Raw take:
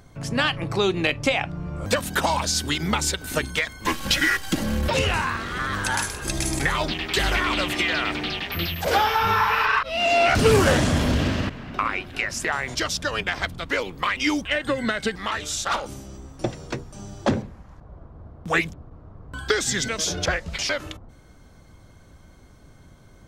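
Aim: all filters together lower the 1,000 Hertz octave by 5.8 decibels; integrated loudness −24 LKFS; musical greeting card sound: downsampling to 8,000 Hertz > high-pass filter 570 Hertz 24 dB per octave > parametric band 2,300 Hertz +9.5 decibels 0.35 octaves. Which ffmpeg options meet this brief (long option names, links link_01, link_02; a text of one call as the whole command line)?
ffmpeg -i in.wav -af "equalizer=frequency=1000:width_type=o:gain=-8,aresample=8000,aresample=44100,highpass=frequency=570:width=0.5412,highpass=frequency=570:width=1.3066,equalizer=frequency=2300:width_type=o:width=0.35:gain=9.5" out.wav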